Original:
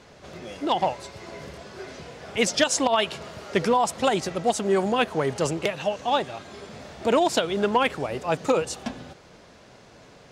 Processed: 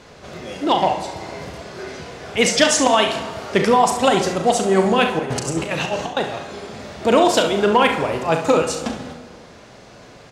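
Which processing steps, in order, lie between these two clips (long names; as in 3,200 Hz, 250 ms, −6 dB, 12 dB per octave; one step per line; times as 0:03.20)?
0:05.19–0:06.17: compressor whose output falls as the input rises −30 dBFS, ratio −0.5
ambience of single reflections 37 ms −8.5 dB, 68 ms −11 dB
on a send at −8.5 dB: convolution reverb RT60 1.6 s, pre-delay 28 ms
on the sum: level +5.5 dB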